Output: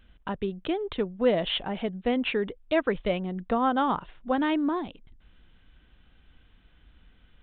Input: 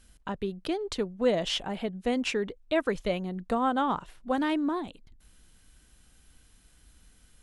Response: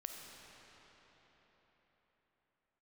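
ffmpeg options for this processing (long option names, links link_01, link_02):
-af "aresample=8000,aresample=44100,volume=2dB"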